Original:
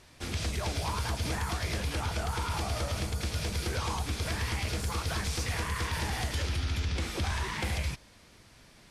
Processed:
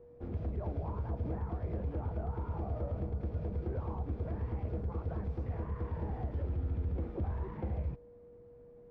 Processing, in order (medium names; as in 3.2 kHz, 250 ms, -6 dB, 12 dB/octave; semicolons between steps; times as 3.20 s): whistle 480 Hz -51 dBFS; Chebyshev low-pass 530 Hz, order 2; trim -2 dB